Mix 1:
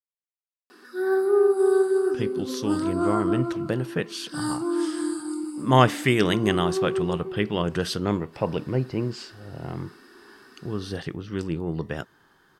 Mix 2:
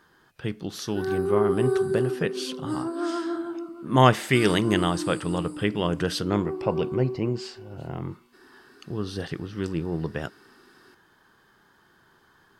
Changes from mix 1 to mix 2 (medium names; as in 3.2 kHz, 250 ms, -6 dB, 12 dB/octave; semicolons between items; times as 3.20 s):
speech: entry -1.75 s; background -4.0 dB